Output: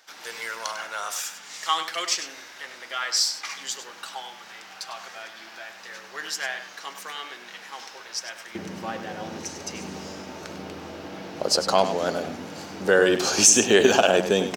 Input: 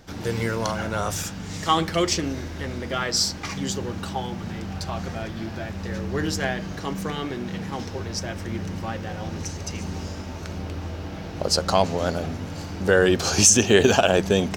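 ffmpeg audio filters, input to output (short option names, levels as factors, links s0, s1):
-filter_complex "[0:a]asetnsamples=n=441:p=0,asendcmd='8.55 highpass f 250',highpass=1100,asplit=2[s0][s1];[s1]adelay=99.13,volume=0.316,highshelf=f=4000:g=-2.23[s2];[s0][s2]amix=inputs=2:normalize=0"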